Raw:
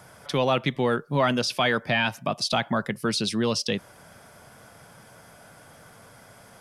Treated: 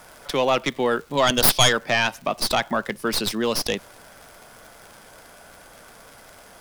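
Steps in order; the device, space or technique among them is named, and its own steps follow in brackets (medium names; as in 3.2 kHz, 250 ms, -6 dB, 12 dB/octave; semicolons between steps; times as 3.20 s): high-pass 260 Hz 12 dB/octave; 1.17–1.73 s: high-order bell 4.3 kHz +10.5 dB 1.1 oct; record under a worn stylus (tracing distortion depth 0.18 ms; crackle 110 per s -37 dBFS; pink noise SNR 31 dB); trim +3 dB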